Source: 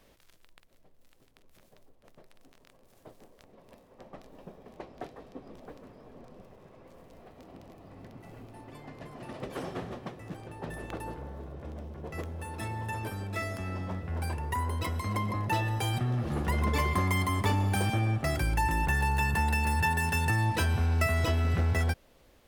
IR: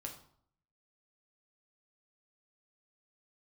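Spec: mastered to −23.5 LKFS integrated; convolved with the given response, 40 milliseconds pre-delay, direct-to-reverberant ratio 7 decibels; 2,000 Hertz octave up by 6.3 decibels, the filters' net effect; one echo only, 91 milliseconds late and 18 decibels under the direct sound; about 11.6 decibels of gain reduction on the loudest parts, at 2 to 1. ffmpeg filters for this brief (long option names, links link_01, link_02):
-filter_complex "[0:a]equalizer=frequency=2000:width_type=o:gain=7.5,acompressor=threshold=-43dB:ratio=2,aecho=1:1:91:0.126,asplit=2[link_01][link_02];[1:a]atrim=start_sample=2205,adelay=40[link_03];[link_02][link_03]afir=irnorm=-1:irlink=0,volume=-4.5dB[link_04];[link_01][link_04]amix=inputs=2:normalize=0,volume=15dB"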